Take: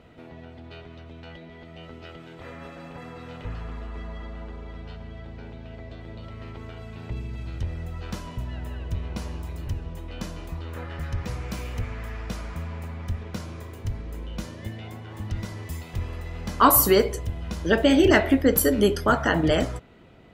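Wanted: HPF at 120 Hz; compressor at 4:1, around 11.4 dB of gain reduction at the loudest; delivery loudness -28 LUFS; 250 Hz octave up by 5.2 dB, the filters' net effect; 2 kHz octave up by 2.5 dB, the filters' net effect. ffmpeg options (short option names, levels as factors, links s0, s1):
-af "highpass=120,equalizer=f=250:t=o:g=6.5,equalizer=f=2000:t=o:g=3,acompressor=threshold=0.0708:ratio=4,volume=1.68"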